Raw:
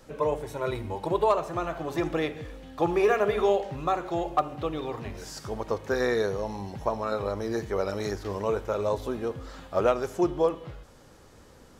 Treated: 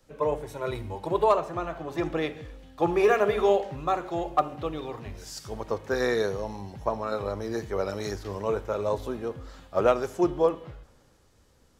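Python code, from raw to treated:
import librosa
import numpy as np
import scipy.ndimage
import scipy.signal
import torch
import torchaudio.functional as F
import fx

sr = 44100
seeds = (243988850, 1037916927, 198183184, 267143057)

y = fx.high_shelf(x, sr, hz=5600.0, db=-5.5, at=(1.37, 2.59))
y = fx.band_widen(y, sr, depth_pct=40)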